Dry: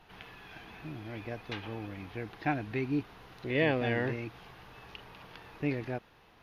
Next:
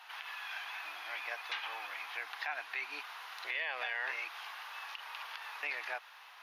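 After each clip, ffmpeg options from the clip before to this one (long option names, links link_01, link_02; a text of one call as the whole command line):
ffmpeg -i in.wav -filter_complex "[0:a]highpass=frequency=900:width=0.5412,highpass=frequency=900:width=1.3066,asplit=2[link_01][link_02];[link_02]acompressor=threshold=-47dB:ratio=6,volume=-1.5dB[link_03];[link_01][link_03]amix=inputs=2:normalize=0,alimiter=level_in=6dB:limit=-24dB:level=0:latency=1:release=77,volume=-6dB,volume=4dB" out.wav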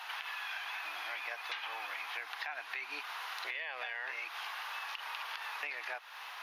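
ffmpeg -i in.wav -af "acompressor=threshold=-48dB:ratio=4,volume=9dB" out.wav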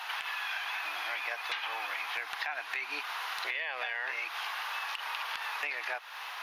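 ffmpeg -i in.wav -af "volume=28dB,asoftclip=hard,volume=-28dB,volume=5dB" out.wav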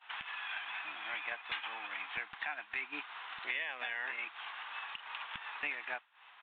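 ffmpeg -i in.wav -af "aresample=8000,aresample=44100,lowshelf=frequency=310:width_type=q:width=1.5:gain=13.5,agate=range=-33dB:threshold=-30dB:ratio=3:detection=peak,volume=1.5dB" out.wav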